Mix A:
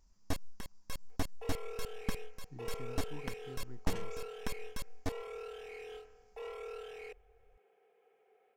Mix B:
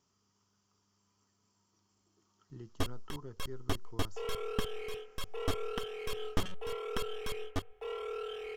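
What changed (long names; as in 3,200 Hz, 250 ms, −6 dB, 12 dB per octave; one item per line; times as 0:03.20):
first sound: entry +2.50 s
second sound: entry +2.75 s
master: add thirty-one-band graphic EQ 100 Hz +5 dB, 400 Hz +9 dB, 1,250 Hz +10 dB, 3,150 Hz +11 dB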